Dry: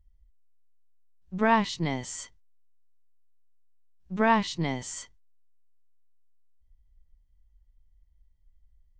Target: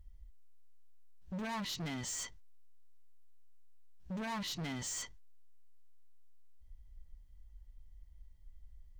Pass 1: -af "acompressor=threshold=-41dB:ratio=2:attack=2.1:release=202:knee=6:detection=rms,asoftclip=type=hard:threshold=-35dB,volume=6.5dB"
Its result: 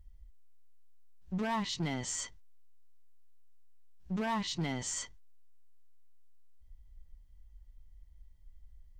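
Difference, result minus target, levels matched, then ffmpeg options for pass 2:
hard clipping: distortion −6 dB
-af "acompressor=threshold=-41dB:ratio=2:attack=2.1:release=202:knee=6:detection=rms,asoftclip=type=hard:threshold=-43.5dB,volume=6.5dB"

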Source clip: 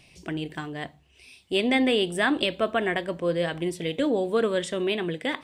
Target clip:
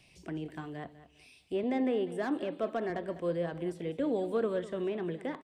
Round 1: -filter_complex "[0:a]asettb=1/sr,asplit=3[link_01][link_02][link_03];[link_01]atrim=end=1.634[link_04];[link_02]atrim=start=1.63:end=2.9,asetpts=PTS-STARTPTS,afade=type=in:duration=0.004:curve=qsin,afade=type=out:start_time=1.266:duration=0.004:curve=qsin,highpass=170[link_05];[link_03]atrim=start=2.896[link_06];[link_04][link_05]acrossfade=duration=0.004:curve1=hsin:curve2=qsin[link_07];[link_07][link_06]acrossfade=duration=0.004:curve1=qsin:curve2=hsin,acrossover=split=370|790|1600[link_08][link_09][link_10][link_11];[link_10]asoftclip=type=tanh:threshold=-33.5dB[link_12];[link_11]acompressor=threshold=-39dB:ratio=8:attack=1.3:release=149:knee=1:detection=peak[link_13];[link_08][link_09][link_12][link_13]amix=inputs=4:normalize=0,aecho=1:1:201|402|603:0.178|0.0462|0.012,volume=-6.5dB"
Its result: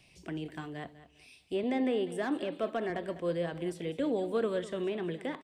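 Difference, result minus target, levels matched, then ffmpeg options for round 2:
downward compressor: peak gain reduction −7 dB
-filter_complex "[0:a]asettb=1/sr,asplit=3[link_01][link_02][link_03];[link_01]atrim=end=1.634[link_04];[link_02]atrim=start=1.63:end=2.9,asetpts=PTS-STARTPTS,afade=type=in:duration=0.004:curve=qsin,afade=type=out:start_time=1.266:duration=0.004:curve=qsin,highpass=170[link_05];[link_03]atrim=start=2.896[link_06];[link_04][link_05]acrossfade=duration=0.004:curve1=hsin:curve2=qsin[link_07];[link_07][link_06]acrossfade=duration=0.004:curve1=qsin:curve2=hsin,acrossover=split=370|790|1600[link_08][link_09][link_10][link_11];[link_10]asoftclip=type=tanh:threshold=-33.5dB[link_12];[link_11]acompressor=threshold=-47dB:ratio=8:attack=1.3:release=149:knee=1:detection=peak[link_13];[link_08][link_09][link_12][link_13]amix=inputs=4:normalize=0,aecho=1:1:201|402|603:0.178|0.0462|0.012,volume=-6.5dB"

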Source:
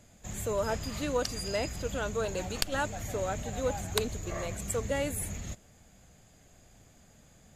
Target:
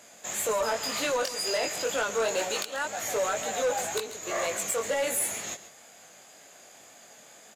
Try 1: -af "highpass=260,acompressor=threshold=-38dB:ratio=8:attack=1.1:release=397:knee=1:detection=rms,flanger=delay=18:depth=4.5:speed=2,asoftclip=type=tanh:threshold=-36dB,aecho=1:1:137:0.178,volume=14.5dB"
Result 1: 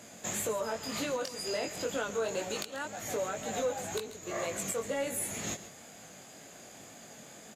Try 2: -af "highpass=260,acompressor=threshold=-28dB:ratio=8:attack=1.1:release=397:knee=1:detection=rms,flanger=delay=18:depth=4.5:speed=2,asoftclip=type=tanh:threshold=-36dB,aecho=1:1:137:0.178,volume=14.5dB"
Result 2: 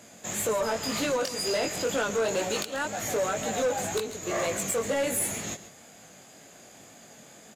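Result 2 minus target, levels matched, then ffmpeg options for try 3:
250 Hz band +7.5 dB
-af "highpass=520,acompressor=threshold=-28dB:ratio=8:attack=1.1:release=397:knee=1:detection=rms,flanger=delay=18:depth=4.5:speed=2,asoftclip=type=tanh:threshold=-36dB,aecho=1:1:137:0.178,volume=14.5dB"

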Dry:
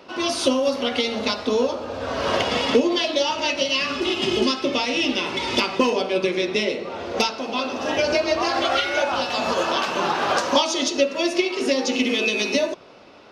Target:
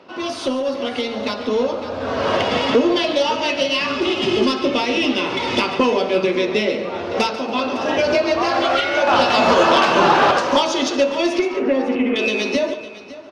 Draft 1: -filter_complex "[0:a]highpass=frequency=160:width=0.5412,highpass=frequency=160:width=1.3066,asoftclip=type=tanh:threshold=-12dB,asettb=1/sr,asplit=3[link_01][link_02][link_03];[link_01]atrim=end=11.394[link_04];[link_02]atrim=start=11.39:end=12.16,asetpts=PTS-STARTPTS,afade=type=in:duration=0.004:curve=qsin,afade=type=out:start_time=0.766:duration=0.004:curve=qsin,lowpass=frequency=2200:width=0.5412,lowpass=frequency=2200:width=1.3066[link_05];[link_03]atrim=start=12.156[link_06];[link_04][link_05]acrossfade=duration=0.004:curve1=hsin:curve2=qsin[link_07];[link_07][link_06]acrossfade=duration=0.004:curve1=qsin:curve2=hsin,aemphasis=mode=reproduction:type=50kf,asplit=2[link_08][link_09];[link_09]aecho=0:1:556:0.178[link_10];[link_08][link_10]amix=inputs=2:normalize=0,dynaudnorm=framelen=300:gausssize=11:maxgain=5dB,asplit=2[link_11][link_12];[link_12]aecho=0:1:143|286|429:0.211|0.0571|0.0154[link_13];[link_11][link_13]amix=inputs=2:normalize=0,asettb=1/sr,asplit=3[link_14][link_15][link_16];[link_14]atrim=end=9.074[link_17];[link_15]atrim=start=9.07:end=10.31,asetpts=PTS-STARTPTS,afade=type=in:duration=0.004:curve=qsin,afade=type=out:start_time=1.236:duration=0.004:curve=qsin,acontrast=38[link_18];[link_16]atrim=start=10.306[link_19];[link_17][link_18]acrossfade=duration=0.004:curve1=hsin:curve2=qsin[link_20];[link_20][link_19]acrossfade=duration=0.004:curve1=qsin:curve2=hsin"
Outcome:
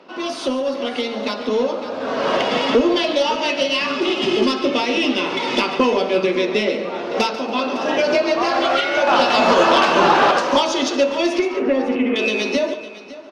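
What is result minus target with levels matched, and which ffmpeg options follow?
125 Hz band −3.0 dB
-filter_complex "[0:a]highpass=frequency=71:width=0.5412,highpass=frequency=71:width=1.3066,asoftclip=type=tanh:threshold=-12dB,asettb=1/sr,asplit=3[link_01][link_02][link_03];[link_01]atrim=end=11.394[link_04];[link_02]atrim=start=11.39:end=12.16,asetpts=PTS-STARTPTS,afade=type=in:duration=0.004:curve=qsin,afade=type=out:start_time=0.766:duration=0.004:curve=qsin,lowpass=frequency=2200:width=0.5412,lowpass=frequency=2200:width=1.3066[link_05];[link_03]atrim=start=12.156[link_06];[link_04][link_05]acrossfade=duration=0.004:curve1=hsin:curve2=qsin[link_07];[link_07][link_06]acrossfade=duration=0.004:curve1=qsin:curve2=hsin,aemphasis=mode=reproduction:type=50kf,asplit=2[link_08][link_09];[link_09]aecho=0:1:556:0.178[link_10];[link_08][link_10]amix=inputs=2:normalize=0,dynaudnorm=framelen=300:gausssize=11:maxgain=5dB,asplit=2[link_11][link_12];[link_12]aecho=0:1:143|286|429:0.211|0.0571|0.0154[link_13];[link_11][link_13]amix=inputs=2:normalize=0,asettb=1/sr,asplit=3[link_14][link_15][link_16];[link_14]atrim=end=9.074[link_17];[link_15]atrim=start=9.07:end=10.31,asetpts=PTS-STARTPTS,afade=type=in:duration=0.004:curve=qsin,afade=type=out:start_time=1.236:duration=0.004:curve=qsin,acontrast=38[link_18];[link_16]atrim=start=10.306[link_19];[link_17][link_18]acrossfade=duration=0.004:curve1=hsin:curve2=qsin[link_20];[link_20][link_19]acrossfade=duration=0.004:curve1=qsin:curve2=hsin"

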